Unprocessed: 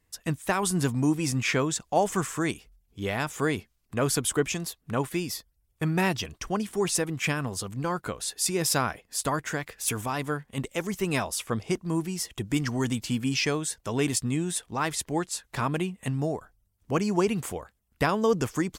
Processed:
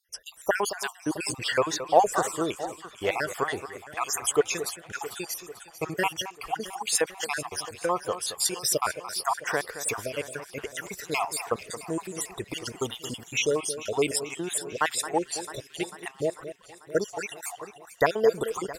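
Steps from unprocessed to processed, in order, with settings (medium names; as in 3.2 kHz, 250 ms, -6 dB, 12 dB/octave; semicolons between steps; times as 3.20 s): random holes in the spectrogram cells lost 58%; resonant low shelf 330 Hz -10.5 dB, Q 1.5; echo whose repeats swap between lows and highs 222 ms, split 2.3 kHz, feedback 77%, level -12 dB; trim +4 dB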